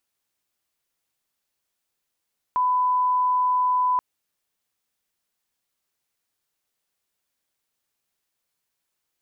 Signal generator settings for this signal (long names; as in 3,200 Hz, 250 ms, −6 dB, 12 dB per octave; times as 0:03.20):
line-up tone −18 dBFS 1.43 s